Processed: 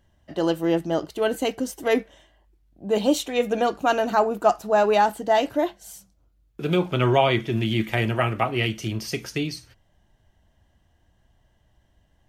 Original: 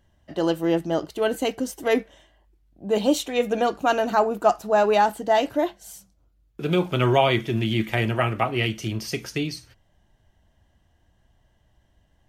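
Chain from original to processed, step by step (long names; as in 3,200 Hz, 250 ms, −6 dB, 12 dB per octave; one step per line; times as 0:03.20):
0:06.77–0:07.52: high-shelf EQ 7,100 Hz −6.5 dB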